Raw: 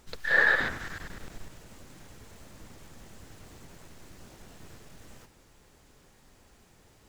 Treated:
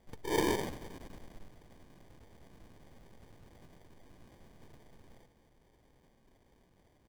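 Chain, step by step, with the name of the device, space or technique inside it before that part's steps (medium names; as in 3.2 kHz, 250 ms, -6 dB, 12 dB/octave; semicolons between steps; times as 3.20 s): crushed at another speed (playback speed 0.8×; sample-and-hold 41×; playback speed 1.25×); trim -7.5 dB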